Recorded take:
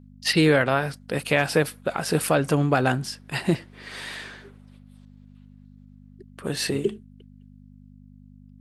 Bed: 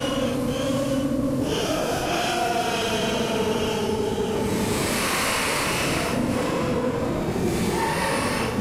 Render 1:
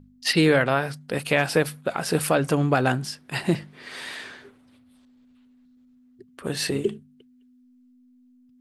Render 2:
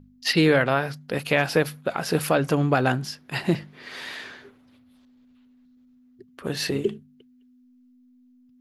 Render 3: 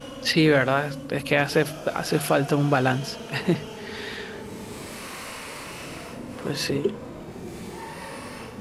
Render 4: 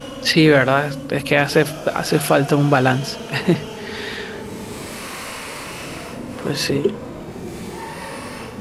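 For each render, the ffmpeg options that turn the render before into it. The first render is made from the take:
-af "bandreject=f=50:t=h:w=4,bandreject=f=100:t=h:w=4,bandreject=f=150:t=h:w=4,bandreject=f=200:t=h:w=4"
-af "equalizer=f=8.6k:t=o:w=0.26:g=-12"
-filter_complex "[1:a]volume=-13.5dB[a];[0:a][a]amix=inputs=2:normalize=0"
-af "volume=6dB,alimiter=limit=-1dB:level=0:latency=1"

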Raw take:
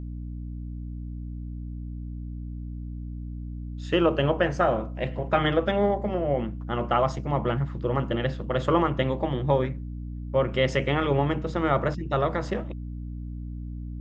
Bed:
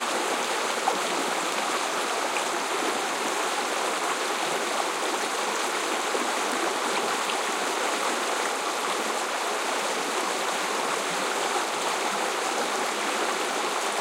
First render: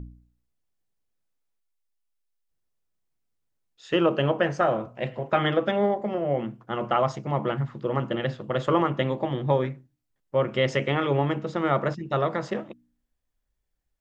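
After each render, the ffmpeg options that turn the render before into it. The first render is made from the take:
-af "bandreject=f=60:t=h:w=4,bandreject=f=120:t=h:w=4,bandreject=f=180:t=h:w=4,bandreject=f=240:t=h:w=4,bandreject=f=300:t=h:w=4"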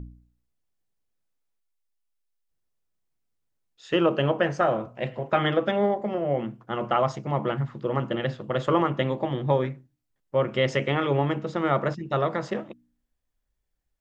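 -af anull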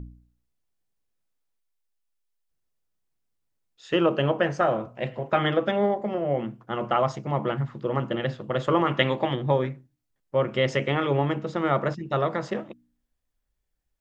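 -filter_complex "[0:a]asplit=3[a][b][c];[a]afade=t=out:st=8.86:d=0.02[d];[b]equalizer=f=2.5k:w=0.44:g=9.5,afade=t=in:st=8.86:d=0.02,afade=t=out:st=9.34:d=0.02[e];[c]afade=t=in:st=9.34:d=0.02[f];[d][e][f]amix=inputs=3:normalize=0"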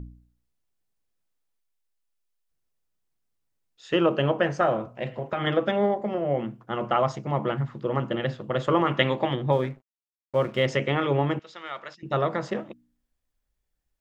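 -filter_complex "[0:a]asettb=1/sr,asplit=3[a][b][c];[a]atrim=end=4.944[d];[b]atrim=start=4.94:end=5.47,asetpts=PTS-STARTPTS,afade=t=in:d=0.004:c=qsin,afade=t=out:st=0.526:d=0.004:c=qsin,acompressor=threshold=-24dB:ratio=4:attack=3.2:release=140:knee=1:detection=peak[e];[c]atrim=start=5.466[f];[d][e]acrossfade=d=0.004:c1=hsin:c2=qsin[g];[g][f]acrossfade=d=0.004:c1=qsin:c2=hsin,asettb=1/sr,asplit=3[h][i][j];[h]atrim=end=9.524[k];[i]atrim=start=9.52:end=10.66,asetpts=PTS-STARTPTS,afade=t=in:d=0.004:c=qsin,afade=t=out:st=1.136:d=0.004:c=qsin,aeval=exprs='sgn(val(0))*max(abs(val(0))-0.00355,0)':c=same[l];[j]atrim=start=10.656[m];[k][l]acrossfade=d=0.004:c1=hsin:c2=qsin[n];[n][m]acrossfade=d=0.004:c1=qsin:c2=hsin,asettb=1/sr,asplit=3[o][p][q];[o]atrim=end=11.394[r];[p]atrim=start=11.39:end=12.03,asetpts=PTS-STARTPTS,afade=t=in:d=0.004:c=qsin,afade=t=out:st=0.636:d=0.004:c=qsin,bandpass=f=4k:t=q:w=0.97[s];[q]atrim=start=12.026[t];[r][s]acrossfade=d=0.004:c1=hsin:c2=qsin[u];[u][t]acrossfade=d=0.004:c1=qsin:c2=hsin"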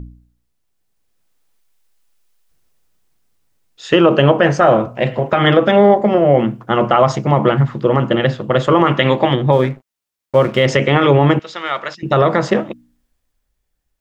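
-af "dynaudnorm=f=150:g=17:m=11.5dB,alimiter=level_in=7dB:limit=-1dB:release=50:level=0:latency=1"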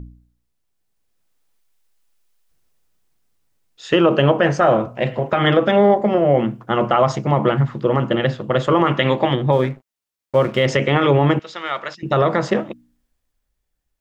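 -af "volume=-3.5dB"

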